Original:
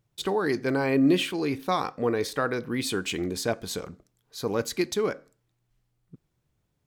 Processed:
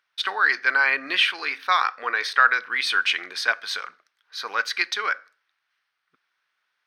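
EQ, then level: Savitzky-Golay filter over 15 samples; resonant high-pass 1.5 kHz, resonance Q 2.5; +8.0 dB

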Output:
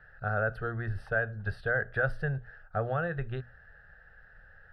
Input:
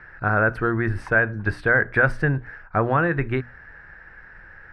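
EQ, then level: peaking EQ 1.5 kHz -4.5 dB 1.1 oct; static phaser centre 1.5 kHz, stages 8; -6.5 dB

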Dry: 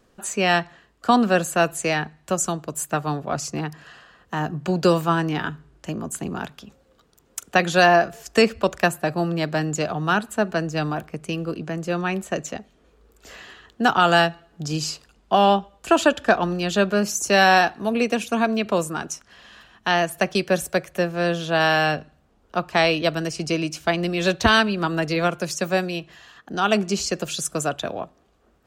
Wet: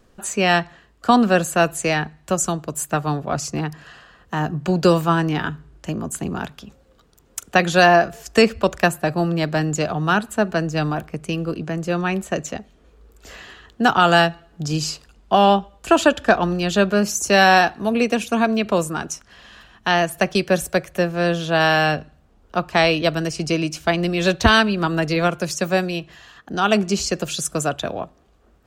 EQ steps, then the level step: bass shelf 86 Hz +8.5 dB; +2.0 dB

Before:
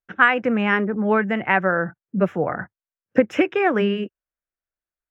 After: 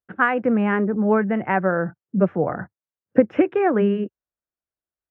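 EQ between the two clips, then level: high-pass 57 Hz; distance through air 320 m; peaking EQ 3.1 kHz -8.5 dB 2.3 oct; +2.5 dB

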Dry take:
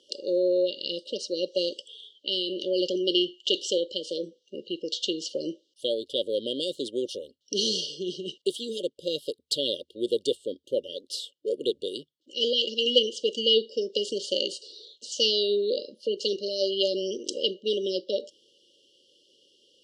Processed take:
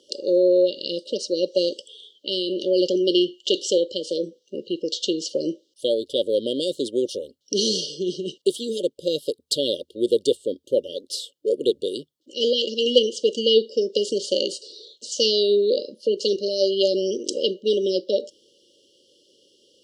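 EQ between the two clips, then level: peaking EQ 2.4 kHz -8.5 dB 1.4 oct; +7.0 dB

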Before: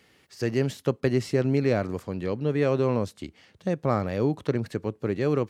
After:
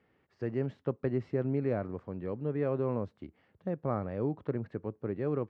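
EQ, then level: low-pass 1.5 kHz 12 dB/octave; -7.5 dB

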